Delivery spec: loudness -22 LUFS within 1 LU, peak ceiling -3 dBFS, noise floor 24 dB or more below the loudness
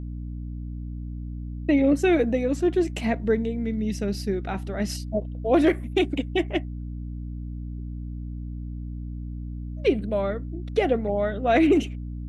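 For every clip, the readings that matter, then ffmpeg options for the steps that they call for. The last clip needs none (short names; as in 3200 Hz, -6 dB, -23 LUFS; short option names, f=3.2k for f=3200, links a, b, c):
hum 60 Hz; harmonics up to 300 Hz; hum level -31 dBFS; loudness -26.0 LUFS; peak -9.5 dBFS; loudness target -22.0 LUFS
-> -af "bandreject=f=60:t=h:w=4,bandreject=f=120:t=h:w=4,bandreject=f=180:t=h:w=4,bandreject=f=240:t=h:w=4,bandreject=f=300:t=h:w=4"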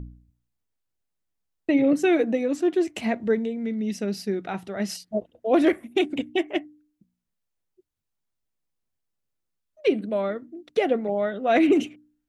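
hum none; loudness -24.5 LUFS; peak -9.0 dBFS; loudness target -22.0 LUFS
-> -af "volume=2.5dB"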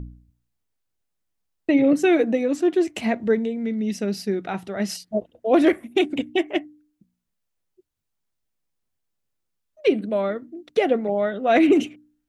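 loudness -22.0 LUFS; peak -6.5 dBFS; noise floor -78 dBFS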